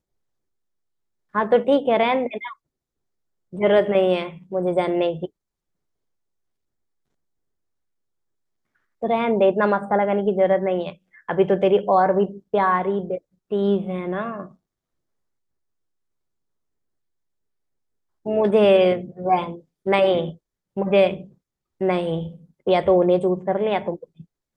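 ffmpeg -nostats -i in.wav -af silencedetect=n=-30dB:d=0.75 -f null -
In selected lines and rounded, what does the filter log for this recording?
silence_start: 0.00
silence_end: 1.35 | silence_duration: 1.35
silence_start: 2.52
silence_end: 3.54 | silence_duration: 1.02
silence_start: 5.26
silence_end: 9.03 | silence_duration: 3.77
silence_start: 14.45
silence_end: 18.26 | silence_duration: 3.81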